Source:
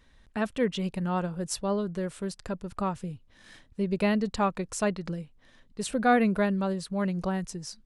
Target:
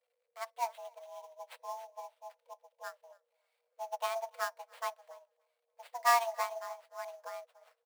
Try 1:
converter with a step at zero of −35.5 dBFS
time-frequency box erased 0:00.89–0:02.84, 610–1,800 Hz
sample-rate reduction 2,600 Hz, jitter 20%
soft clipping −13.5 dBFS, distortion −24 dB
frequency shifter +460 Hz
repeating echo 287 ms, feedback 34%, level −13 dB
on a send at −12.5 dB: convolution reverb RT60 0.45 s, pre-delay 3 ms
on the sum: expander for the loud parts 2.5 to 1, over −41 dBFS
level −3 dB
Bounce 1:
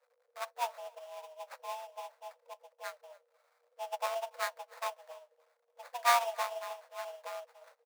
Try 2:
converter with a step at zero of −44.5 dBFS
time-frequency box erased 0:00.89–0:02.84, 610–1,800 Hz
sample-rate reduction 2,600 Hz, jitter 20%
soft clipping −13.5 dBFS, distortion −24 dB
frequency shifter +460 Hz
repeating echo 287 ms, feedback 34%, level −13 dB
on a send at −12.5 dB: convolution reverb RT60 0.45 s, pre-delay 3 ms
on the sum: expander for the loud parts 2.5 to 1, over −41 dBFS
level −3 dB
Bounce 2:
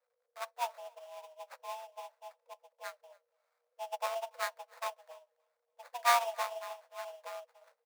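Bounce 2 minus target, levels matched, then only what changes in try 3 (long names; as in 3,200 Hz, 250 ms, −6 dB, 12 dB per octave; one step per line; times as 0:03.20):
sample-rate reduction: distortion +5 dB
change: sample-rate reduction 5,800 Hz, jitter 20%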